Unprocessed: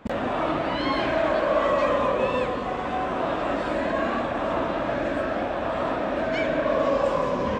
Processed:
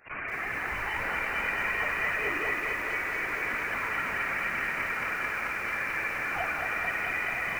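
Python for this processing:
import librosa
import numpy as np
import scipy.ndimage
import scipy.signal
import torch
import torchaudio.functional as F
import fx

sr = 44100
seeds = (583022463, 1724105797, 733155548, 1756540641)

y = scipy.signal.sosfilt(scipy.signal.butter(2, 1300.0, 'highpass', fs=sr, output='sos'), x)
y = 10.0 ** (-29.5 / 20.0) * np.tanh(y / 10.0 ** (-29.5 / 20.0))
y = fx.chorus_voices(y, sr, voices=6, hz=0.97, base_ms=11, depth_ms=3.3, mix_pct=65)
y = fx.echo_alternate(y, sr, ms=481, hz=1700.0, feedback_pct=65, wet_db=-5.5)
y = fx.freq_invert(y, sr, carrier_hz=3000)
y = fx.echo_crushed(y, sr, ms=220, feedback_pct=80, bits=9, wet_db=-4.5)
y = F.gain(torch.from_numpy(y), 4.5).numpy()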